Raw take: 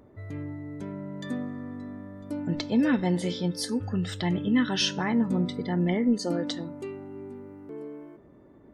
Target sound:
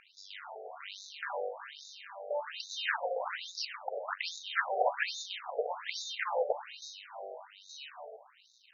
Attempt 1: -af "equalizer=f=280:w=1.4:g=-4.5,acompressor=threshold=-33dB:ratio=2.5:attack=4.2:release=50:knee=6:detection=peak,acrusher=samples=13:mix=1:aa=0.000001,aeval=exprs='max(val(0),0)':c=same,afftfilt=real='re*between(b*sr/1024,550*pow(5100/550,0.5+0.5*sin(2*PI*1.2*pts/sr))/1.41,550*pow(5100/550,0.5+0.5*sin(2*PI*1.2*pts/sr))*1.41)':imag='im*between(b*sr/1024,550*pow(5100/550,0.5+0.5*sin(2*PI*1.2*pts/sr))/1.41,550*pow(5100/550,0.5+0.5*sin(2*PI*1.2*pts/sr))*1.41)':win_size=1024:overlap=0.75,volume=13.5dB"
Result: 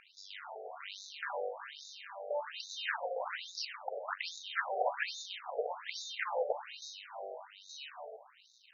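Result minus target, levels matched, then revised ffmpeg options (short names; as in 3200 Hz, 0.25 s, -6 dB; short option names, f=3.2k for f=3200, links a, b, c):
compressor: peak gain reduction +4 dB
-af "equalizer=f=280:w=1.4:g=-4.5,acompressor=threshold=-26.5dB:ratio=2.5:attack=4.2:release=50:knee=6:detection=peak,acrusher=samples=13:mix=1:aa=0.000001,aeval=exprs='max(val(0),0)':c=same,afftfilt=real='re*between(b*sr/1024,550*pow(5100/550,0.5+0.5*sin(2*PI*1.2*pts/sr))/1.41,550*pow(5100/550,0.5+0.5*sin(2*PI*1.2*pts/sr))*1.41)':imag='im*between(b*sr/1024,550*pow(5100/550,0.5+0.5*sin(2*PI*1.2*pts/sr))/1.41,550*pow(5100/550,0.5+0.5*sin(2*PI*1.2*pts/sr))*1.41)':win_size=1024:overlap=0.75,volume=13.5dB"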